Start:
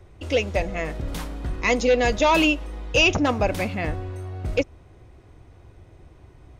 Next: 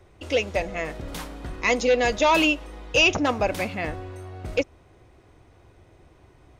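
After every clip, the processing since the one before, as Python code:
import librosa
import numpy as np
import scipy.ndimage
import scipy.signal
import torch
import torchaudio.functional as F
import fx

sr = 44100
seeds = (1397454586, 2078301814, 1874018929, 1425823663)

y = fx.low_shelf(x, sr, hz=200.0, db=-8.0)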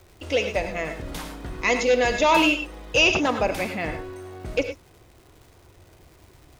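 y = fx.dmg_crackle(x, sr, seeds[0], per_s=400.0, level_db=-45.0)
y = fx.rev_gated(y, sr, seeds[1], gate_ms=130, shape='rising', drr_db=6.5)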